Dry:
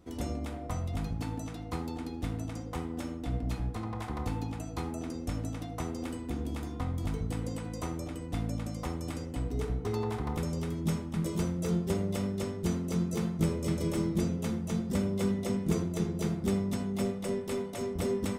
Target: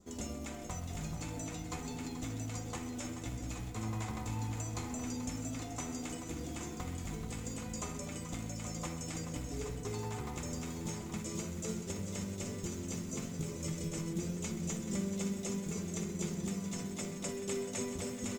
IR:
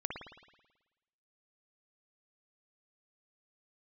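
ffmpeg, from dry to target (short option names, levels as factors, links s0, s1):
-filter_complex "[0:a]asettb=1/sr,asplit=3[s0][s1][s2];[s0]atrim=end=11.994[s3];[s1]atrim=start=11.99:end=14.02,asetpts=PTS-STARTPTS,afade=t=in:d=0.004:c=qsin,afade=t=out:st=2.026:d=0.004:c=qsin,lowshelf=f=130:g=6[s4];[s2]atrim=start=14.016[s5];[s3][s4]acrossfade=d=0.004:c1=hsin:c2=qsin[s6];[s6][s5]acrossfade=d=0.004:c1=qsin:c2=hsin,bandreject=f=328:t=h:w=4,bandreject=f=656:t=h:w=4,bandreject=f=984:t=h:w=4,adynamicequalizer=threshold=0.00112:dfrequency=2400:dqfactor=2:tfrequency=2400:tqfactor=2:attack=5:release=100:ratio=0.375:range=2.5:mode=boostabove:tftype=bell,acompressor=threshold=0.0224:ratio=6,lowpass=f=7100:t=q:w=7.5,acrusher=bits=5:mode=log:mix=0:aa=0.000001,flanger=delay=4.9:depth=4.4:regen=47:speed=0.13:shape=sinusoidal,aecho=1:1:45|129|306|432|436|823:0.158|0.211|0.106|0.266|0.141|0.376,volume=1.12" -ar 44100 -c:a libmp3lame -b:a 80k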